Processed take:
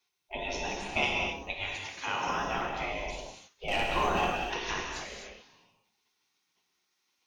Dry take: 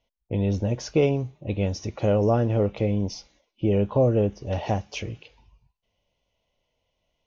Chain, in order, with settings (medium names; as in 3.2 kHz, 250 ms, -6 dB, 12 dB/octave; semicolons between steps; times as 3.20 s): 1.53–2.28 s: high-pass 530 Hz -> 130 Hz 12 dB/octave; spectral gate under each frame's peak -20 dB weak; 3.68–4.30 s: waveshaping leveller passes 2; gated-style reverb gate 290 ms flat, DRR -1 dB; trim +6 dB